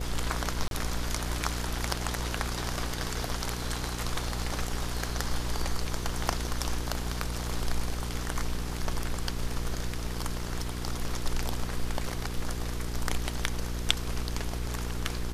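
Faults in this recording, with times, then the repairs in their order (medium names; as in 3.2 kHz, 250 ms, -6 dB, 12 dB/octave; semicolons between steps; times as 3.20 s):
hum 60 Hz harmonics 8 -35 dBFS
0.68–0.71 s: dropout 32 ms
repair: de-hum 60 Hz, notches 8; interpolate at 0.68 s, 32 ms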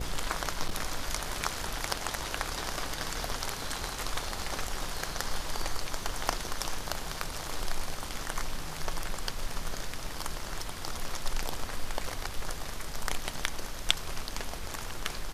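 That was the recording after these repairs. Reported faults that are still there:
nothing left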